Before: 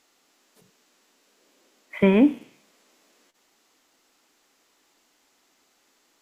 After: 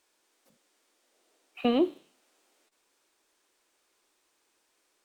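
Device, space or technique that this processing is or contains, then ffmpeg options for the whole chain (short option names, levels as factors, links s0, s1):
nightcore: -af "asetrate=54243,aresample=44100,volume=0.422"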